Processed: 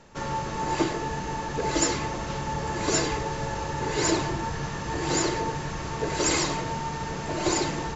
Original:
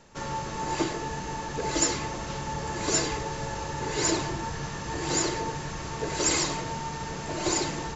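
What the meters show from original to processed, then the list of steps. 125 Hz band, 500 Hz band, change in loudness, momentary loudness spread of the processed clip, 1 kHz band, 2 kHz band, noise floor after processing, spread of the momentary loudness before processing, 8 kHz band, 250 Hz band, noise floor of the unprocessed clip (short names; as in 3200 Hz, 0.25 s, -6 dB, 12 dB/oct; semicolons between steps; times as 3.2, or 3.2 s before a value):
+3.0 dB, +3.0 dB, +1.5 dB, 7 LU, +3.0 dB, +2.0 dB, -33 dBFS, 8 LU, n/a, +3.0 dB, -36 dBFS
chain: high shelf 4800 Hz -6 dB; gain +3 dB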